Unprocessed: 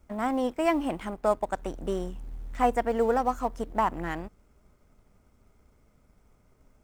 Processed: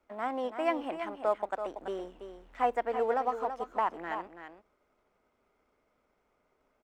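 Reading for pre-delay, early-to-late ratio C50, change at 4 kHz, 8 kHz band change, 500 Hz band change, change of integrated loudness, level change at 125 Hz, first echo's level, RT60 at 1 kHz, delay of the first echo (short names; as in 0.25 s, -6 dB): none, none, -5.0 dB, under -10 dB, -4.0 dB, -4.5 dB, under -15 dB, -9.0 dB, none, 0.332 s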